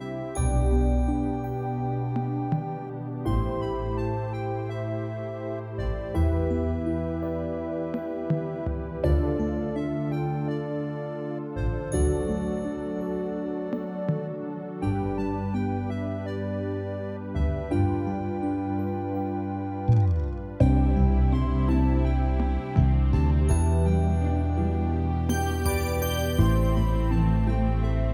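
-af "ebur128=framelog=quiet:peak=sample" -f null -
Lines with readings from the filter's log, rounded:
Integrated loudness:
  I:         -26.9 LUFS
  Threshold: -36.9 LUFS
Loudness range:
  LRA:         5.9 LU
  Threshold: -47.1 LUFS
  LRA low:   -29.8 LUFS
  LRA high:  -23.9 LUFS
Sample peak:
  Peak:       -7.3 dBFS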